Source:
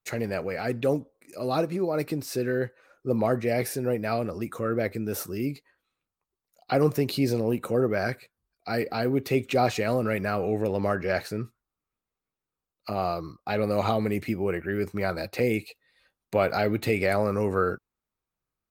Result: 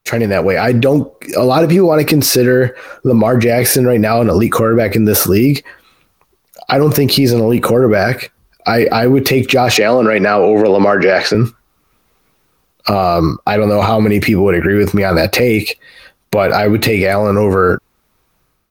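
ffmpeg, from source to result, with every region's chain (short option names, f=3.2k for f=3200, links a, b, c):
-filter_complex "[0:a]asettb=1/sr,asplit=3[a][b][c];[a]atrim=end=9.774[d];[b]atrim=start=9.77:end=11.35,asetpts=PTS-STARTPTS,afade=t=in:d=0.004:c=qsin,afade=t=out:st=1.576:d=0.004:c=qsin,highpass=120,acrossover=split=220 6400:gain=0.224 1 0.0708[e][f][g];[e][f][g]amix=inputs=3:normalize=0[h];[c]atrim=start=11.346[i];[d][h]acrossfade=d=0.004:c1=hsin:c2=qsin[j];[j][i]acrossfade=d=0.004:c1=qsin:c2=hsin,equalizer=f=7.7k:t=o:w=0.31:g=-6,dynaudnorm=f=230:g=5:m=16dB,alimiter=level_in=16.5dB:limit=-1dB:release=50:level=0:latency=1,volume=-1dB"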